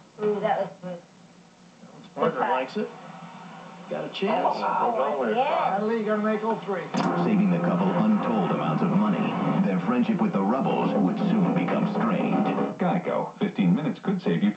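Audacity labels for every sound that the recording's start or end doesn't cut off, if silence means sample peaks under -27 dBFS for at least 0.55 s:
2.170000	2.850000	sound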